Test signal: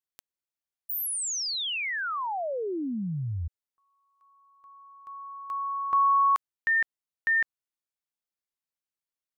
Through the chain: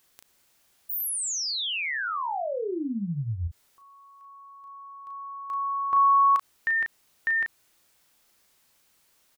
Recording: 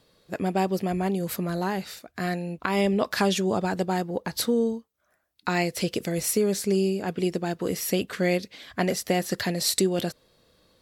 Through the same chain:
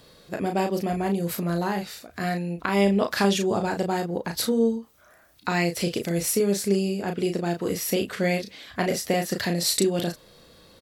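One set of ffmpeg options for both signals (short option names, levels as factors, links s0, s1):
-filter_complex "[0:a]acompressor=mode=upward:threshold=0.00891:ratio=2.5:attack=0.15:release=33:knee=2.83:detection=peak,asplit=2[s0][s1];[s1]adelay=35,volume=0.531[s2];[s0][s2]amix=inputs=2:normalize=0"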